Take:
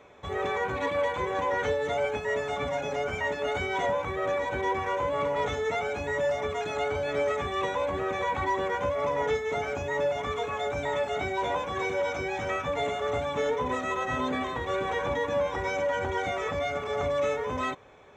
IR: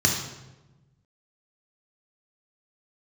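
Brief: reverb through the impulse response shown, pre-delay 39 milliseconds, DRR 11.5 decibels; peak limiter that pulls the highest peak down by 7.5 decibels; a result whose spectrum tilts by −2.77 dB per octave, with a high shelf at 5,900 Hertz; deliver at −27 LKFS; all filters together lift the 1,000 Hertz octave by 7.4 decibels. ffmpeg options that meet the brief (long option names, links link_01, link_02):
-filter_complex "[0:a]equalizer=frequency=1000:width_type=o:gain=8.5,highshelf=frequency=5900:gain=7,alimiter=limit=-19.5dB:level=0:latency=1,asplit=2[link_01][link_02];[1:a]atrim=start_sample=2205,adelay=39[link_03];[link_02][link_03]afir=irnorm=-1:irlink=0,volume=-25.5dB[link_04];[link_01][link_04]amix=inputs=2:normalize=0"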